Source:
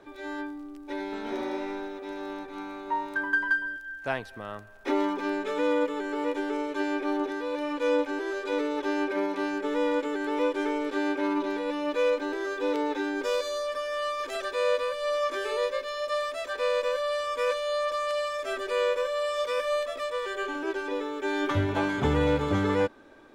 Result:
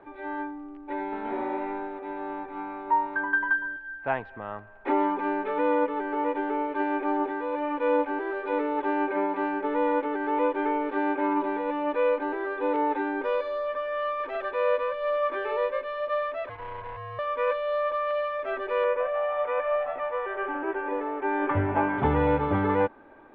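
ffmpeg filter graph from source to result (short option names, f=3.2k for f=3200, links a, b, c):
-filter_complex "[0:a]asettb=1/sr,asplit=3[a][b][c];[a]atrim=end=16.494[d];[b]atrim=start=16.49:end=17.19,asetpts=PTS-STARTPTS,afade=t=in:d=0.004:c=qsin,afade=t=out:st=0.696:d=0.004:c=qsin,aeval=exprs='(tanh(63.1*val(0)+0.8)-tanh(0.8))/63.1':c=same,aeval=exprs='val(0)*sin(2*PI*480*n/s)':c=same[e];[c]atrim=start=17.186[f];[d][e]acrossfade=d=0.004:c1=hsin:c2=qsin[g];[g][f]acrossfade=d=0.004:c1=qsin:c2=hsin,asettb=1/sr,asplit=3[h][i][j];[h]atrim=end=18.844[k];[i]atrim=start=18.84:end=21.98,asetpts=PTS-STARTPTS,afade=t=in:d=0.004:c=qsin,afade=t=out:st=3.136:d=0.004:c=qsin,lowpass=f=2.8k:w=0.5412,lowpass=f=2.8k:w=1.3066,asplit=5[l][m][n][o][p];[m]adelay=155,afreqshift=150,volume=-17.5dB[q];[n]adelay=310,afreqshift=300,volume=-23.9dB[r];[o]adelay=465,afreqshift=450,volume=-30.3dB[s];[p]adelay=620,afreqshift=600,volume=-36.6dB[t];[l][q][r][s][t]amix=inputs=5:normalize=0,atrim=end_sample=138474[u];[j]atrim=start=21.976[v];[k][u]acrossfade=d=0.004:c1=hsin:c2=qsin[w];[w][v]acrossfade=d=0.004:c1=qsin:c2=hsin,lowpass=f=2.5k:w=0.5412,lowpass=f=2.5k:w=1.3066,equalizer=f=860:t=o:w=0.52:g=7.5"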